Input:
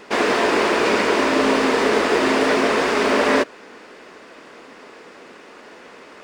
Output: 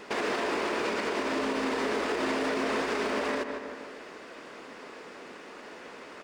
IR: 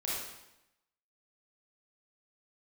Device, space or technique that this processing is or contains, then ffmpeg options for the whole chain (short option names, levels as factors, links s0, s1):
stacked limiters: -filter_complex "[0:a]asplit=2[s0][s1];[s1]adelay=154,lowpass=f=3200:p=1,volume=0.224,asplit=2[s2][s3];[s3]adelay=154,lowpass=f=3200:p=1,volume=0.46,asplit=2[s4][s5];[s5]adelay=154,lowpass=f=3200:p=1,volume=0.46,asplit=2[s6][s7];[s7]adelay=154,lowpass=f=3200:p=1,volume=0.46,asplit=2[s8][s9];[s9]adelay=154,lowpass=f=3200:p=1,volume=0.46[s10];[s0][s2][s4][s6][s8][s10]amix=inputs=6:normalize=0,alimiter=limit=0.282:level=0:latency=1:release=435,alimiter=limit=0.126:level=0:latency=1:release=79,volume=0.708"